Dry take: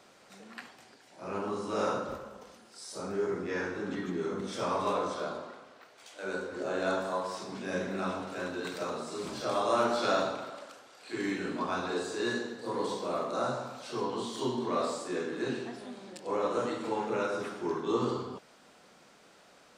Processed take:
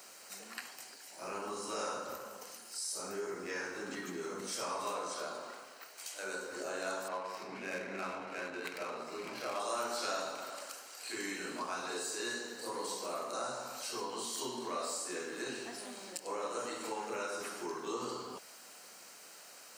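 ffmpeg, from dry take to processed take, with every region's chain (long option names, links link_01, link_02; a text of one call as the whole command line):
ffmpeg -i in.wav -filter_complex "[0:a]asettb=1/sr,asplit=3[link_01][link_02][link_03];[link_01]atrim=end=7.084[link_04];[link_02]atrim=start=7.08:end=9.6,asetpts=PTS-STARTPTS,afade=type=in:duration=0.004:curve=qsin,afade=type=out:start_time=2.516:duration=0.004:curve=qsin,equalizer=frequency=2300:width_type=o:width=0.4:gain=9,adynamicsmooth=sensitivity=4.5:basefreq=1900[link_05];[link_03]atrim=start=9.596[link_06];[link_04][link_05]acrossfade=duration=0.004:curve1=hsin:curve2=qsin[link_07];[link_07][link_06]acrossfade=duration=0.004:curve1=qsin:curve2=hsin,aemphasis=mode=production:type=riaa,bandreject=frequency=3500:width=6,acompressor=threshold=-42dB:ratio=2,volume=1dB" out.wav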